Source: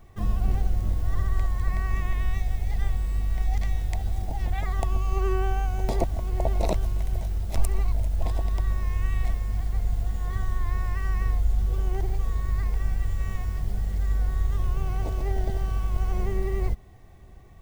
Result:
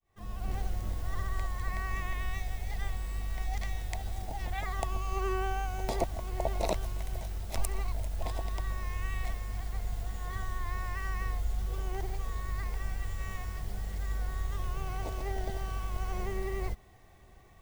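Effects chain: fade-in on the opening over 0.59 s; bass shelf 410 Hz -9.5 dB

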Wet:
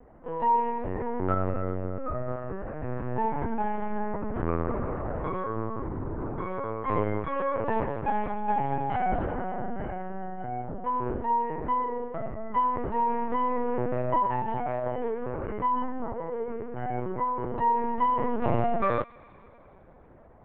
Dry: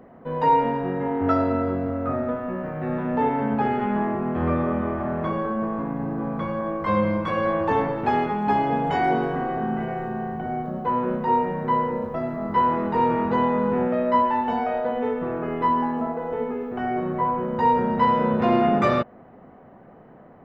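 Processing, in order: low-pass 2.4 kHz 12 dB/octave; on a send: feedback echo behind a high-pass 100 ms, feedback 80%, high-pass 1.6 kHz, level -21.5 dB; on the sum: LPC vocoder at 8 kHz pitch kept; trim -5 dB

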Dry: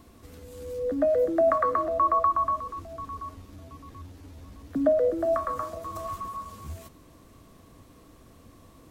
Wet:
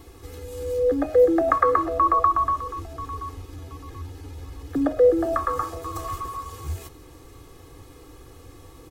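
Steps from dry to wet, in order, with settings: comb 2.4 ms, depth 92%; trim +4.5 dB

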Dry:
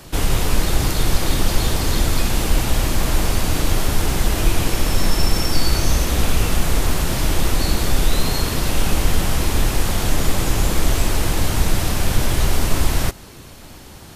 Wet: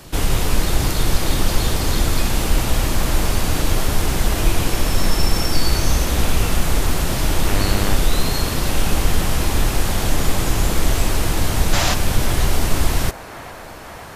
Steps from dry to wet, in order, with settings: 7.46–7.94 s: mains buzz 100 Hz, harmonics 32, -25 dBFS -4 dB/octave; 11.73–11.94 s: time-frequency box 540–7700 Hz +8 dB; feedback echo behind a band-pass 527 ms, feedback 83%, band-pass 980 Hz, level -12 dB

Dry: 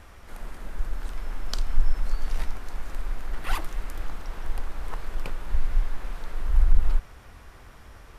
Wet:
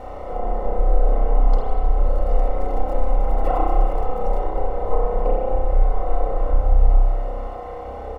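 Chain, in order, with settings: 2.07–4.39 s: zero-crossing glitches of -25.5 dBFS; high-order bell 530 Hz +13 dB 1.3 oct; comb 3.9 ms, depth 77%; peak limiter -12.5 dBFS, peak gain reduction 10.5 dB; compression 2:1, threshold -19 dBFS, peak gain reduction 3 dB; bit crusher 8-bit; Savitzky-Golay filter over 65 samples; spring tank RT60 1.5 s, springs 31 ms, chirp 50 ms, DRR -4.5 dB; tape noise reduction on one side only encoder only; trim +3.5 dB

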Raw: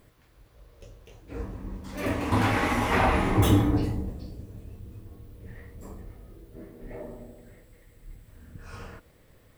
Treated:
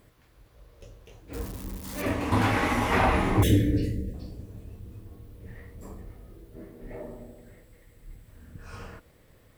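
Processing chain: 1.33–2.02 s: zero-crossing glitches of -30 dBFS; 3.43–4.14 s: elliptic band-stop 550–1700 Hz, stop band 40 dB; Chebyshev shaper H 2 -23 dB, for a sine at -9.5 dBFS

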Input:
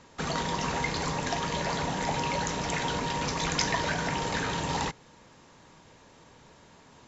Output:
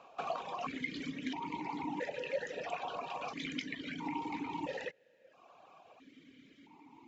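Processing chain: reverb removal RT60 1 s; compression 5:1, threshold -35 dBFS, peak gain reduction 11.5 dB; stepped vowel filter 1.5 Hz; trim +11 dB

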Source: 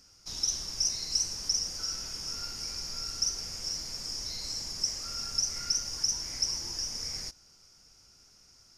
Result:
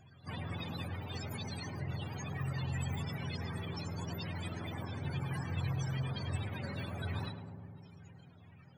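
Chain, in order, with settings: spectrum inverted on a logarithmic axis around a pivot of 440 Hz; formant shift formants -5 st; filtered feedback delay 105 ms, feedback 81%, low-pass 1.2 kHz, level -6.5 dB; trim +10.5 dB

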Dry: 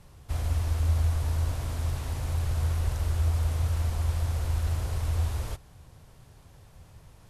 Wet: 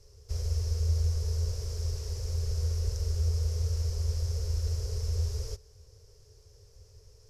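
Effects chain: FFT filter 100 Hz 0 dB, 240 Hz -30 dB, 430 Hz +9 dB, 720 Hz -14 dB, 3.7 kHz -8 dB, 5.3 kHz +12 dB, 8.9 kHz -5 dB; trim -2.5 dB

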